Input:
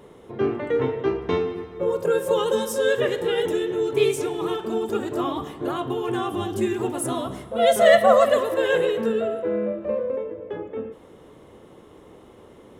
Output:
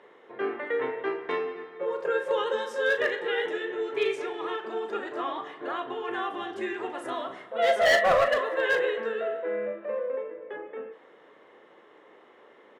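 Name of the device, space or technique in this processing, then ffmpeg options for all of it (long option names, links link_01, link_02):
megaphone: -filter_complex "[0:a]highpass=470,lowpass=3600,equalizer=frequency=1800:width_type=o:width=0.58:gain=9,asoftclip=type=hard:threshold=-13.5dB,asplit=2[link_01][link_02];[link_02]adelay=38,volume=-10dB[link_03];[link_01][link_03]amix=inputs=2:normalize=0,volume=-4dB"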